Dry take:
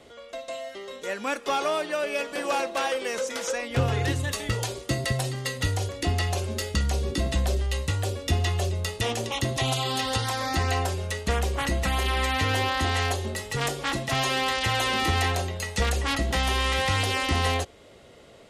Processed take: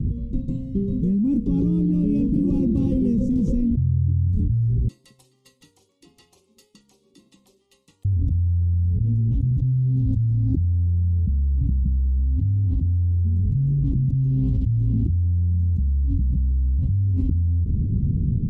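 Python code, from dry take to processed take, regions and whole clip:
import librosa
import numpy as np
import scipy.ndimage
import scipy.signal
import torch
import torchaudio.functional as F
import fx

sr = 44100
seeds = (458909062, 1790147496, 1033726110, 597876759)

y = fx.chain(x, sr, fx.highpass(hz=910.0, slope=24),
    fx.upward_expand(threshold_db=-41.0, expansion=1.5), at=(4.88, 8.05))
y = scipy.signal.sosfilt(scipy.signal.cheby2(4, 60, 600.0, 'lowpass', fs=sr, output='sos'), y)
y = fx.env_flatten(y, sr, amount_pct=100)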